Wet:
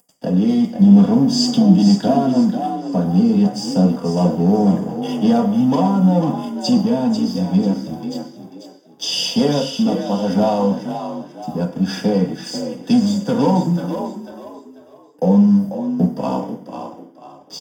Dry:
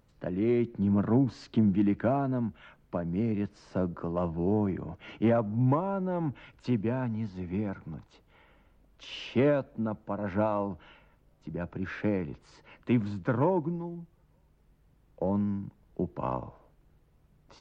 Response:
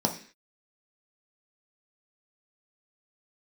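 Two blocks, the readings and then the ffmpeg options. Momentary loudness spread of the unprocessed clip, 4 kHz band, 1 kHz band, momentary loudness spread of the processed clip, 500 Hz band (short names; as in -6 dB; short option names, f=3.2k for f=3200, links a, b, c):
15 LU, +23.0 dB, +12.5 dB, 14 LU, +10.0 dB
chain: -filter_complex "[0:a]highpass=f=170:p=1,highshelf=f=3.7k:g=11.5,aecho=1:1:4.2:0.74,acrossover=split=250|500|2300[a][b][c][d];[b]alimiter=level_in=8dB:limit=-24dB:level=0:latency=1,volume=-8dB[e];[a][e][c][d]amix=inputs=4:normalize=0,asoftclip=type=tanh:threshold=-24.5dB,aexciter=amount=5.3:drive=7.1:freq=3.3k,aeval=exprs='sgn(val(0))*max(abs(val(0))-0.00668,0)':c=same,asuperstop=centerf=4100:order=4:qfactor=2.7,asplit=5[f][g][h][i][j];[g]adelay=492,afreqshift=43,volume=-8dB[k];[h]adelay=984,afreqshift=86,volume=-17.9dB[l];[i]adelay=1476,afreqshift=129,volume=-27.8dB[m];[j]adelay=1968,afreqshift=172,volume=-37.7dB[n];[f][k][l][m][n]amix=inputs=5:normalize=0[o];[1:a]atrim=start_sample=2205,asetrate=37044,aresample=44100[p];[o][p]afir=irnorm=-1:irlink=0"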